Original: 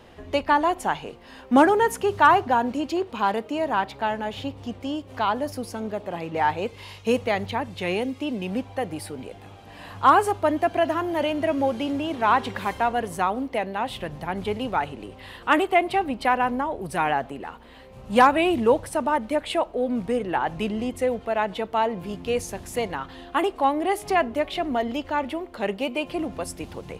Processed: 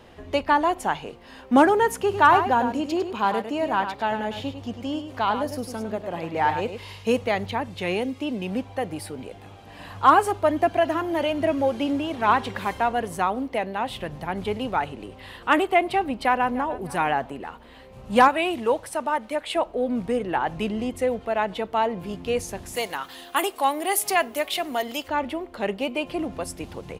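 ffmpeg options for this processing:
ffmpeg -i in.wav -filter_complex "[0:a]asplit=3[link_01][link_02][link_03];[link_01]afade=type=out:start_time=2.06:duration=0.02[link_04];[link_02]aecho=1:1:102:0.376,afade=type=in:start_time=2.06:duration=0.02,afade=type=out:start_time=7.05:duration=0.02[link_05];[link_03]afade=type=in:start_time=7.05:duration=0.02[link_06];[link_04][link_05][link_06]amix=inputs=3:normalize=0,asettb=1/sr,asplit=3[link_07][link_08][link_09];[link_07]atrim=end=9.804[link_10];[link_08]atrim=start=9.8:end=12.5,asetpts=PTS-STARTPTS,afade=type=in:duration=0.004:curve=qsin,afade=type=out:start_time=2.696:duration=0.004:curve=qsin,aphaser=in_gain=1:out_gain=1:delay=4:decay=0.27:speed=1.2:type=triangular[link_11];[link_09]atrim=start=12.496[link_12];[link_10][link_11]acrossfade=duration=0.004:curve1=hsin:curve2=qsin[link_13];[link_13][link_12]acrossfade=duration=0.004:curve1=qsin:curve2=hsin,asplit=2[link_14][link_15];[link_15]afade=type=in:start_time=16.24:duration=0.01,afade=type=out:start_time=16.75:duration=0.01,aecho=0:1:300|600|900:0.141254|0.0494388|0.0173036[link_16];[link_14][link_16]amix=inputs=2:normalize=0,asettb=1/sr,asplit=3[link_17][link_18][link_19];[link_17]atrim=end=18.284[link_20];[link_18]atrim=start=18.28:end=19.56,asetpts=PTS-STARTPTS,afade=type=in:duration=0.004:curve=qsin,afade=type=out:start_time=1.276:duration=0.004:curve=qsin,lowshelf=frequency=330:gain=-11.5[link_21];[link_19]atrim=start=19.556[link_22];[link_20][link_21]acrossfade=duration=0.004:curve1=hsin:curve2=qsin[link_23];[link_23][link_22]acrossfade=duration=0.004:curve1=qsin:curve2=hsin,asplit=3[link_24][link_25][link_26];[link_24]afade=type=out:start_time=22.75:duration=0.02[link_27];[link_25]aemphasis=mode=production:type=riaa,afade=type=in:start_time=22.75:duration=0.02,afade=type=out:start_time=25.07:duration=0.02[link_28];[link_26]afade=type=in:start_time=25.07:duration=0.02[link_29];[link_27][link_28][link_29]amix=inputs=3:normalize=0" out.wav

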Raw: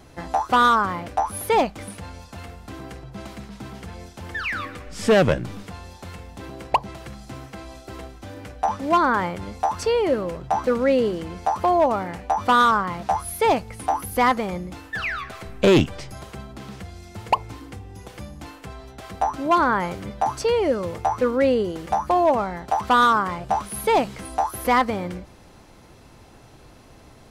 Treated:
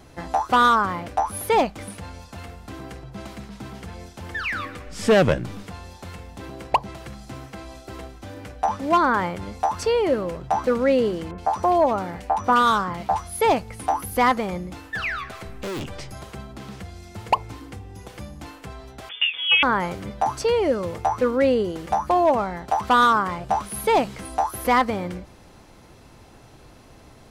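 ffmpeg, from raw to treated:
ffmpeg -i in.wav -filter_complex "[0:a]asettb=1/sr,asplit=3[link_01][link_02][link_03];[link_01]atrim=end=11.314[link_04];[link_02]atrim=start=11.31:end=13.41,asetpts=PTS-STARTPTS,afade=type=in:duration=0.004:curve=qsin,afade=type=out:start_time=2.096:duration=0.004:curve=qsin,acrossover=split=2000[link_05][link_06];[link_06]adelay=70[link_07];[link_05][link_07]amix=inputs=2:normalize=0,atrim=end_sample=92610[link_08];[link_03]atrim=start=13.406[link_09];[link_04][link_08]acrossfade=duration=0.004:curve1=hsin:curve2=qsin[link_10];[link_10][link_09]acrossfade=duration=0.004:curve1=qsin:curve2=hsin,asettb=1/sr,asplit=3[link_11][link_12][link_13];[link_11]atrim=end=15.504[link_14];[link_12]atrim=start=15.5:end=15.9,asetpts=PTS-STARTPTS,afade=type=in:duration=0.004:curve=qsin,afade=type=out:start_time=0.396:duration=0.004:curve=qsin,volume=28.5dB,asoftclip=hard,volume=-28.5dB[link_15];[link_13]atrim=start=15.896[link_16];[link_14][link_15]acrossfade=duration=0.004:curve1=hsin:curve2=qsin[link_17];[link_17][link_16]acrossfade=duration=0.004:curve1=qsin:curve2=hsin,asettb=1/sr,asplit=3[link_18][link_19][link_20];[link_18]atrim=end=19.094[link_21];[link_19]atrim=start=19.09:end=19.63,asetpts=PTS-STARTPTS,afade=type=in:duration=0.004:curve=qsin,afade=type=out:start_time=0.536:duration=0.004:curve=qsin,lowpass=frequency=3100:width_type=q:width=0.5098,lowpass=frequency=3100:width_type=q:width=0.6013,lowpass=frequency=3100:width_type=q:width=0.9,lowpass=frequency=3100:width_type=q:width=2.563,afreqshift=-3600[link_22];[link_20]atrim=start=19.626[link_23];[link_21][link_22]acrossfade=duration=0.004:curve1=hsin:curve2=qsin[link_24];[link_24][link_23]acrossfade=duration=0.004:curve1=qsin:curve2=hsin" out.wav

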